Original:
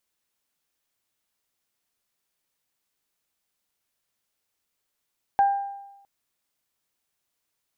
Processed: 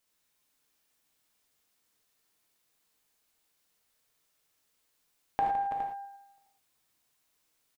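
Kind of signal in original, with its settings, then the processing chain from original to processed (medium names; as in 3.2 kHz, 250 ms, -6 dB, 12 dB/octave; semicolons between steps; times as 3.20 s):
additive tone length 0.66 s, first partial 797 Hz, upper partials -18 dB, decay 0.98 s, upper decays 0.67 s, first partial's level -14 dB
compression, threshold -30 dBFS; on a send: multi-tap echo 74/162/323/331/414/432 ms -10/-11/-18/-9/-11.5/-18.5 dB; on the sum: gated-style reverb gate 130 ms flat, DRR 0 dB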